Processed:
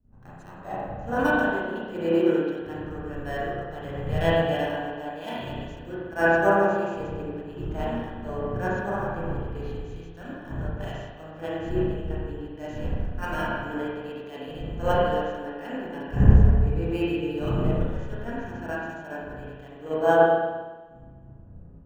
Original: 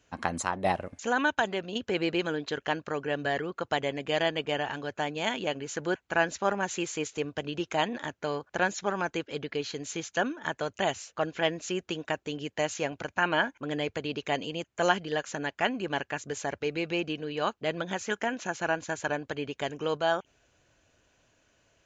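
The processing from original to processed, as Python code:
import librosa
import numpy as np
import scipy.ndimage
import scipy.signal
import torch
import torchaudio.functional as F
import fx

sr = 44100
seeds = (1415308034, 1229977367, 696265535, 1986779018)

p1 = fx.dmg_wind(x, sr, seeds[0], corner_hz=170.0, level_db=-35.0)
p2 = fx.high_shelf(p1, sr, hz=5200.0, db=-12.0)
p3 = fx.notch(p2, sr, hz=2200.0, q=7.0)
p4 = fx.sample_hold(p3, sr, seeds[1], rate_hz=7200.0, jitter_pct=0)
p5 = p3 + (p4 * librosa.db_to_amplitude(-10.0))
p6 = fx.hpss(p5, sr, part='percussive', gain_db=-11)
p7 = p6 + 10.0 ** (-19.0 / 20.0) * np.pad(p6, (int(175 * sr / 1000.0), 0))[:len(p6)]
p8 = fx.rev_spring(p7, sr, rt60_s=2.4, pass_ms=(30, 38), chirp_ms=70, drr_db=-7.5)
p9 = fx.band_widen(p8, sr, depth_pct=100)
y = p9 * librosa.db_to_amplitude(-5.5)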